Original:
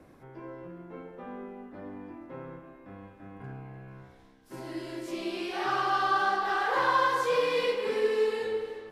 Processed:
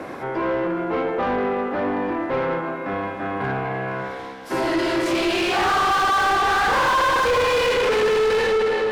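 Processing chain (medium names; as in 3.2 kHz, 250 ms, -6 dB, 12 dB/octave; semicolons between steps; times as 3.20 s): Schroeder reverb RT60 2.4 s, combs from 32 ms, DRR 9 dB; overdrive pedal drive 35 dB, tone 2.2 kHz, clips at -12 dBFS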